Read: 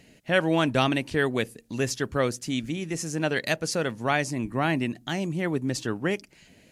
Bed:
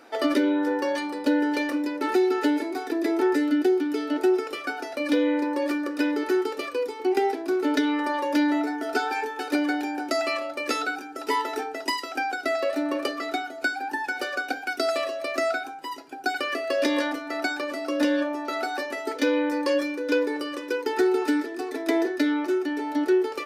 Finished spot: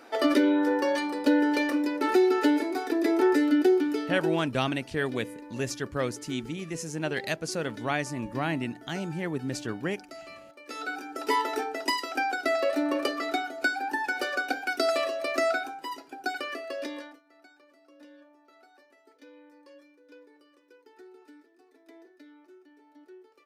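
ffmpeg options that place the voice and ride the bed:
ffmpeg -i stem1.wav -i stem2.wav -filter_complex "[0:a]adelay=3800,volume=-4.5dB[link_01];[1:a]volume=18.5dB,afade=type=out:start_time=3.8:duration=0.69:silence=0.112202,afade=type=in:start_time=10.67:duration=0.43:silence=0.11885,afade=type=out:start_time=15.64:duration=1.58:silence=0.0354813[link_02];[link_01][link_02]amix=inputs=2:normalize=0" out.wav

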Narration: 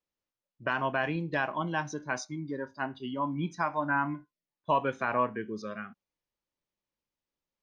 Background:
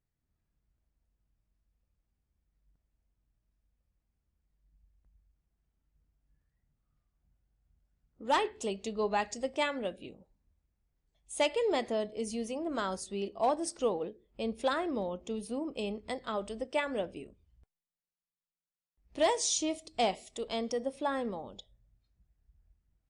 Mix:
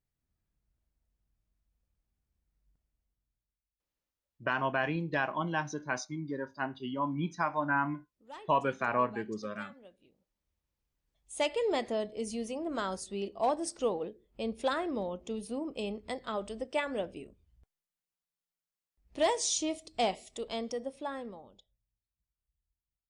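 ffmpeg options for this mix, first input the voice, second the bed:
ffmpeg -i stem1.wav -i stem2.wav -filter_complex "[0:a]adelay=3800,volume=-1dB[link_01];[1:a]volume=17dB,afade=type=out:start_time=2.71:duration=0.9:silence=0.133352,afade=type=in:start_time=10.28:duration=1.37:silence=0.112202,afade=type=out:start_time=20.33:duration=1.54:silence=0.105925[link_02];[link_01][link_02]amix=inputs=2:normalize=0" out.wav

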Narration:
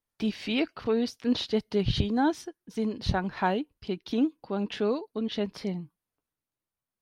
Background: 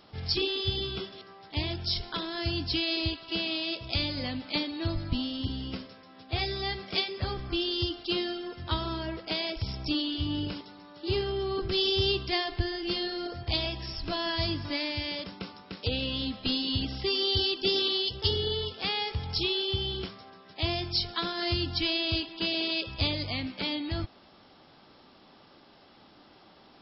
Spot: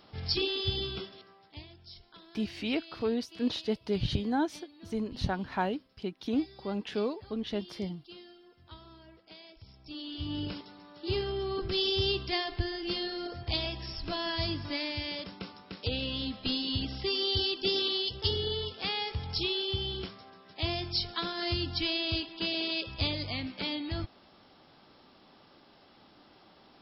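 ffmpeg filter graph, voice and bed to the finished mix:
ffmpeg -i stem1.wav -i stem2.wav -filter_complex "[0:a]adelay=2150,volume=-4dB[link_01];[1:a]volume=16dB,afade=type=out:start_time=0.83:duration=0.84:silence=0.11885,afade=type=in:start_time=9.84:duration=0.62:silence=0.133352[link_02];[link_01][link_02]amix=inputs=2:normalize=0" out.wav

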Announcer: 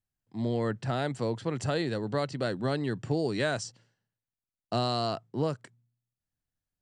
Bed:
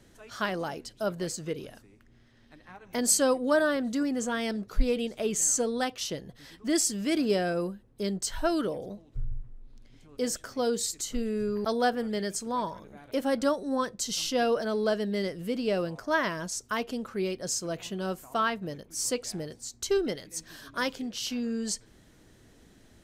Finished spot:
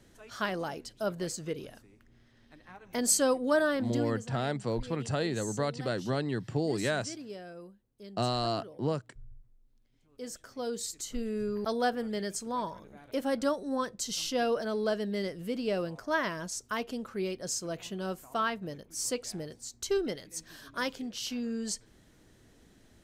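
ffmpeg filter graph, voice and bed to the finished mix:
ffmpeg -i stem1.wav -i stem2.wav -filter_complex "[0:a]adelay=3450,volume=-1.5dB[link_01];[1:a]volume=12dB,afade=type=out:start_time=3.82:duration=0.45:silence=0.177828,afade=type=in:start_time=9.92:duration=1.47:silence=0.199526[link_02];[link_01][link_02]amix=inputs=2:normalize=0" out.wav

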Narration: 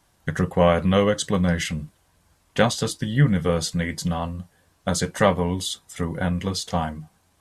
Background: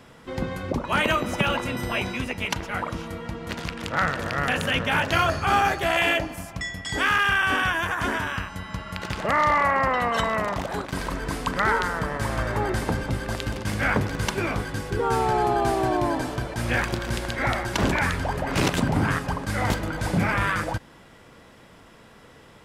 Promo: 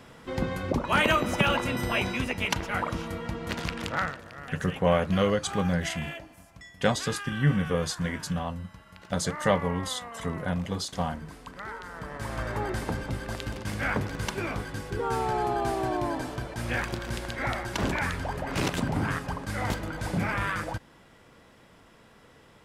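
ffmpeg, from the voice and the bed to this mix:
ffmpeg -i stem1.wav -i stem2.wav -filter_complex "[0:a]adelay=4250,volume=-5.5dB[link_01];[1:a]volume=11dB,afade=type=out:start_time=3.8:duration=0.41:silence=0.149624,afade=type=in:start_time=11.82:duration=0.65:silence=0.266073[link_02];[link_01][link_02]amix=inputs=2:normalize=0" out.wav

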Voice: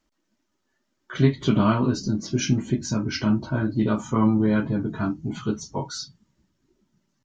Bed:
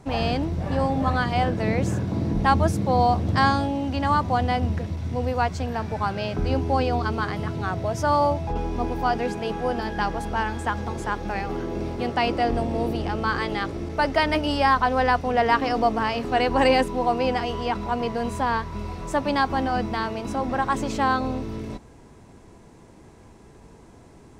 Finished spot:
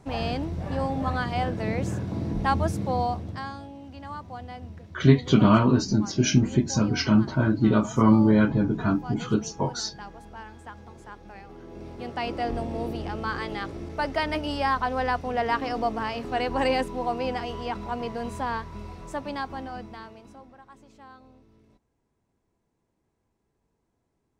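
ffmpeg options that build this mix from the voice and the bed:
ffmpeg -i stem1.wav -i stem2.wav -filter_complex "[0:a]adelay=3850,volume=2dB[link_01];[1:a]volume=6.5dB,afade=type=out:start_time=2.86:duration=0.57:silence=0.251189,afade=type=in:start_time=11.56:duration=0.94:silence=0.281838,afade=type=out:start_time=18.46:duration=2.1:silence=0.0841395[link_02];[link_01][link_02]amix=inputs=2:normalize=0" out.wav

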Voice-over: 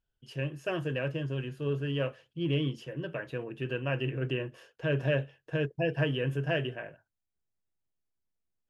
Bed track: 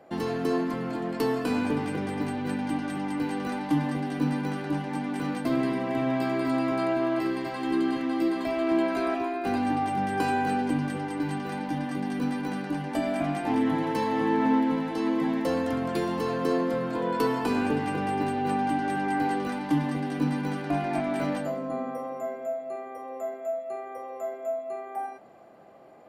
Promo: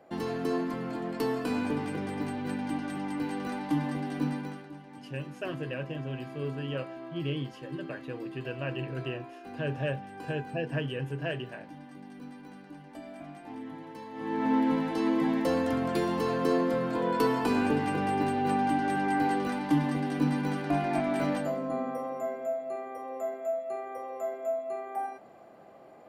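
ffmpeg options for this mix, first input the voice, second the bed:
ffmpeg -i stem1.wav -i stem2.wav -filter_complex "[0:a]adelay=4750,volume=-3.5dB[link_01];[1:a]volume=12.5dB,afade=type=out:start_time=4.23:duration=0.47:silence=0.223872,afade=type=in:start_time=14.13:duration=0.57:silence=0.158489[link_02];[link_01][link_02]amix=inputs=2:normalize=0" out.wav

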